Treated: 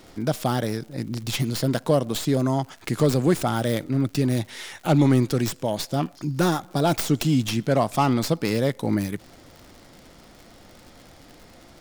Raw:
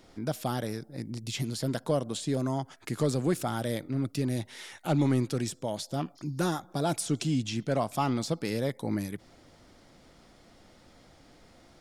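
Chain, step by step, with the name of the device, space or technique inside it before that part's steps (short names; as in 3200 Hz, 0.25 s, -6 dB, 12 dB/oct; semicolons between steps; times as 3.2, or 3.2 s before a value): record under a worn stylus (tracing distortion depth 0.14 ms; crackle 110/s -44 dBFS; pink noise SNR 40 dB); gain +7.5 dB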